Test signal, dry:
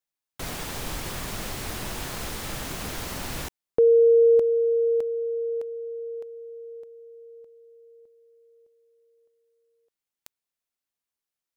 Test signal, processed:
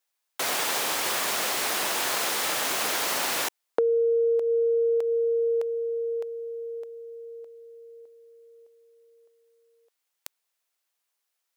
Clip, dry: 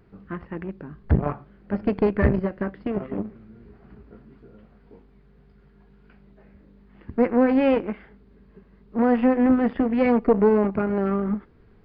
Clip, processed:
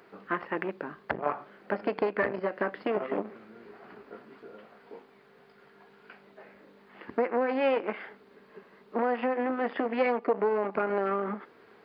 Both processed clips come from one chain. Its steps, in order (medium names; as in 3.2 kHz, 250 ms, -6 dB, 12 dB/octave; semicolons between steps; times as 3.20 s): compression 12:1, threshold -26 dBFS; high-pass 510 Hz 12 dB/octave; trim +9 dB